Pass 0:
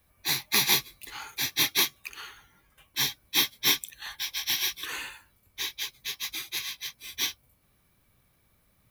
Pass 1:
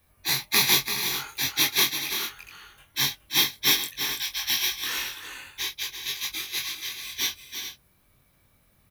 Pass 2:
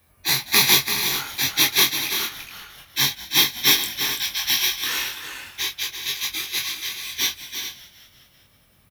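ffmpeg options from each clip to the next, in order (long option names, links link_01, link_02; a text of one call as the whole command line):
ffmpeg -i in.wav -filter_complex "[0:a]asplit=2[link_01][link_02];[link_02]adelay=22,volume=-4dB[link_03];[link_01][link_03]amix=inputs=2:normalize=0,asplit=2[link_04][link_05];[link_05]aecho=0:1:337|419:0.376|0.282[link_06];[link_04][link_06]amix=inputs=2:normalize=0,volume=1dB" out.wav
ffmpeg -i in.wav -filter_complex "[0:a]highpass=44,asplit=7[link_01][link_02][link_03][link_04][link_05][link_06][link_07];[link_02]adelay=193,afreqshift=-80,volume=-18dB[link_08];[link_03]adelay=386,afreqshift=-160,volume=-22.2dB[link_09];[link_04]adelay=579,afreqshift=-240,volume=-26.3dB[link_10];[link_05]adelay=772,afreqshift=-320,volume=-30.5dB[link_11];[link_06]adelay=965,afreqshift=-400,volume=-34.6dB[link_12];[link_07]adelay=1158,afreqshift=-480,volume=-38.8dB[link_13];[link_01][link_08][link_09][link_10][link_11][link_12][link_13]amix=inputs=7:normalize=0,volume=4.5dB" out.wav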